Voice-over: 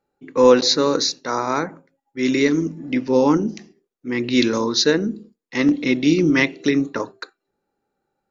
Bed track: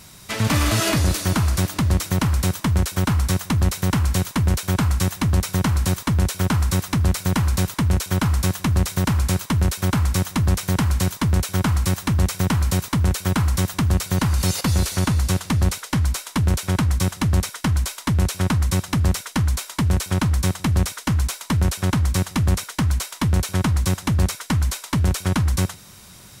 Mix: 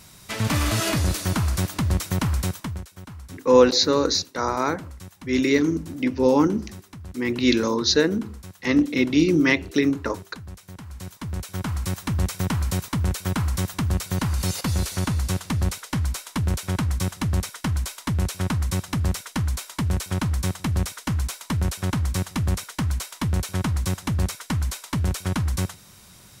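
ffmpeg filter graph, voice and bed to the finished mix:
-filter_complex "[0:a]adelay=3100,volume=0.794[s0];[1:a]volume=4.22,afade=t=out:st=2.37:d=0.49:silence=0.141254,afade=t=in:st=10.86:d=1.36:silence=0.158489[s1];[s0][s1]amix=inputs=2:normalize=0"

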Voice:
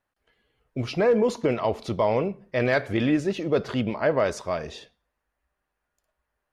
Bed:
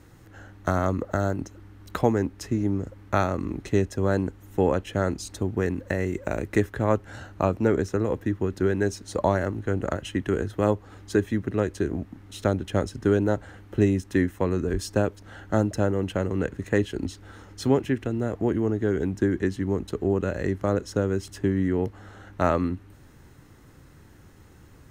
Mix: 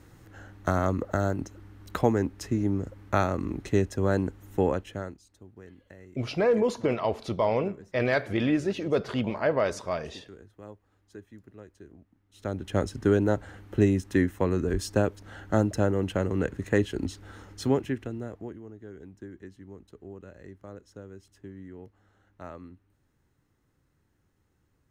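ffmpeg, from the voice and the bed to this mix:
-filter_complex "[0:a]adelay=5400,volume=0.75[s0];[1:a]volume=10.6,afade=t=out:st=4.55:d=0.65:silence=0.0841395,afade=t=in:st=12.31:d=0.52:silence=0.0794328,afade=t=out:st=17.41:d=1.18:silence=0.112202[s1];[s0][s1]amix=inputs=2:normalize=0"

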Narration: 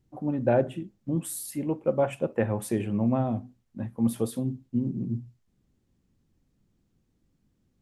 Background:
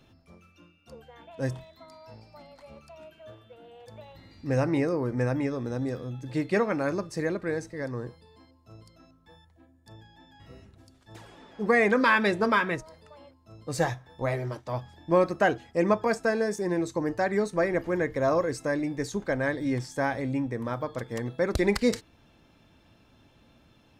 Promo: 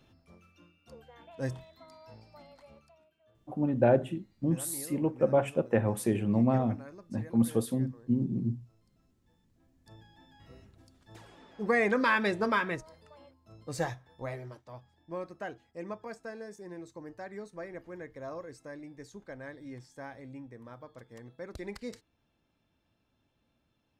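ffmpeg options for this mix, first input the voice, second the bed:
-filter_complex "[0:a]adelay=3350,volume=0.944[s0];[1:a]volume=3.76,afade=t=out:st=2.51:d=0.54:silence=0.158489,afade=t=in:st=9.51:d=0.42:silence=0.16788,afade=t=out:st=13.53:d=1.27:silence=0.251189[s1];[s0][s1]amix=inputs=2:normalize=0"

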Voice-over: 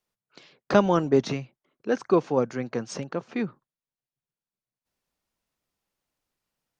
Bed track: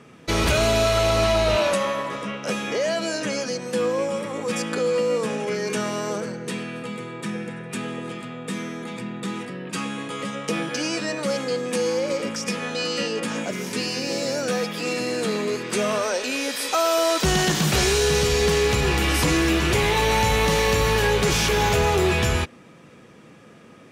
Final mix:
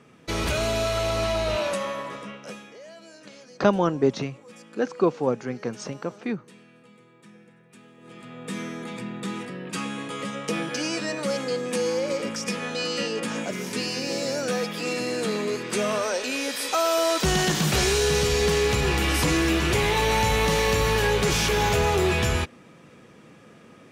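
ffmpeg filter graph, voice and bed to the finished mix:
-filter_complex "[0:a]adelay=2900,volume=0.944[s0];[1:a]volume=4.73,afade=t=out:st=2.09:d=0.64:silence=0.16788,afade=t=in:st=7.98:d=0.62:silence=0.112202[s1];[s0][s1]amix=inputs=2:normalize=0"

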